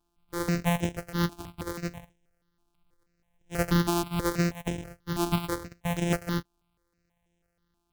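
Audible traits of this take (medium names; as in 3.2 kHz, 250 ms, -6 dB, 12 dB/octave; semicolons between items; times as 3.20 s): a buzz of ramps at a fixed pitch in blocks of 256 samples; notches that jump at a steady rate 6.2 Hz 530–4500 Hz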